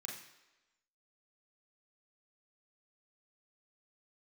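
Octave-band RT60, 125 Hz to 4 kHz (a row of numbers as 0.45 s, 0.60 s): 0.60 s, 0.95 s, 1.1 s, 1.1 s, 1.1 s, 1.0 s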